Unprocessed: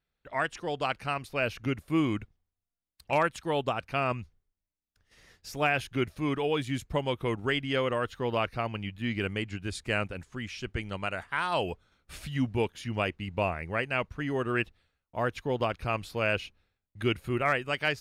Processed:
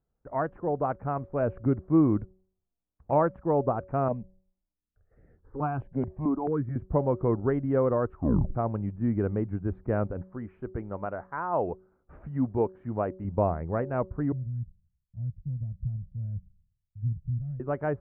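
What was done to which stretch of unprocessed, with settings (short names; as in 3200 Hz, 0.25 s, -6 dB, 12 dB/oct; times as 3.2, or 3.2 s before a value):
4.08–6.76 step phaser 4.6 Hz 340–3800 Hz
8.07 tape stop 0.48 s
10.22–13.25 low shelf 230 Hz -8.5 dB
14.32–17.6 elliptic band-stop 150–7300 Hz
whole clip: Bessel low-pass 770 Hz, order 6; de-hum 187.4 Hz, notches 3; gain +6 dB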